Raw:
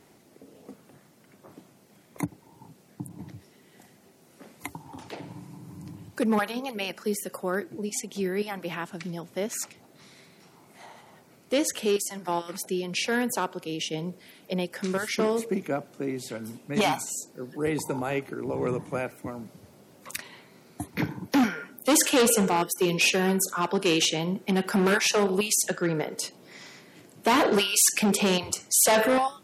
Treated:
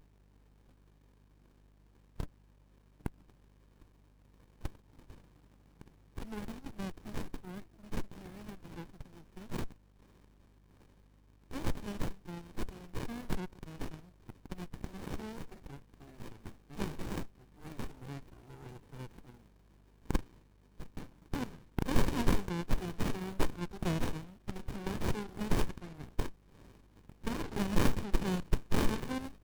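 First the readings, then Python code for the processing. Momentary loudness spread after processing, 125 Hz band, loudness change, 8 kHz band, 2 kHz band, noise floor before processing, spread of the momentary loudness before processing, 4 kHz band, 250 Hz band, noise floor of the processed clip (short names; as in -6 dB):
18 LU, -4.5 dB, -13.5 dB, -24.5 dB, -16.0 dB, -58 dBFS, 20 LU, -18.0 dB, -10.5 dB, -64 dBFS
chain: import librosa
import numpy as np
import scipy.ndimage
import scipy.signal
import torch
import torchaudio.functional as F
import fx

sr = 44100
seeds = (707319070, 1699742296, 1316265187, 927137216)

y = librosa.effects.preemphasis(x, coef=0.97, zi=[0.0])
y = fx.add_hum(y, sr, base_hz=50, snr_db=30)
y = fx.running_max(y, sr, window=65)
y = y * 10.0 ** (2.0 / 20.0)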